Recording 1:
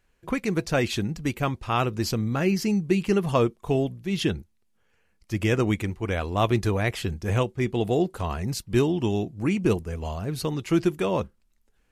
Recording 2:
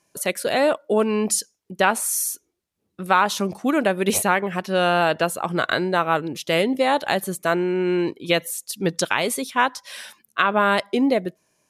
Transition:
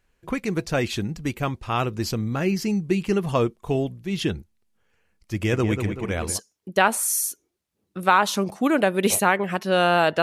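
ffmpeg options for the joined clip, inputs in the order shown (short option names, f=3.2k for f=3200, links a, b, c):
-filter_complex "[0:a]asplit=3[a][b][c];[a]afade=t=out:st=5.42:d=0.02[d];[b]asplit=2[e][f];[f]adelay=191,lowpass=f=2.5k:p=1,volume=-6.5dB,asplit=2[g][h];[h]adelay=191,lowpass=f=2.5k:p=1,volume=0.51,asplit=2[i][j];[j]adelay=191,lowpass=f=2.5k:p=1,volume=0.51,asplit=2[k][l];[l]adelay=191,lowpass=f=2.5k:p=1,volume=0.51,asplit=2[m][n];[n]adelay=191,lowpass=f=2.5k:p=1,volume=0.51,asplit=2[o][p];[p]adelay=191,lowpass=f=2.5k:p=1,volume=0.51[q];[e][g][i][k][m][o][q]amix=inputs=7:normalize=0,afade=t=in:st=5.42:d=0.02,afade=t=out:st=6.4:d=0.02[r];[c]afade=t=in:st=6.4:d=0.02[s];[d][r][s]amix=inputs=3:normalize=0,apad=whole_dur=10.22,atrim=end=10.22,atrim=end=6.4,asetpts=PTS-STARTPTS[t];[1:a]atrim=start=1.27:end=5.25,asetpts=PTS-STARTPTS[u];[t][u]acrossfade=d=0.16:c1=tri:c2=tri"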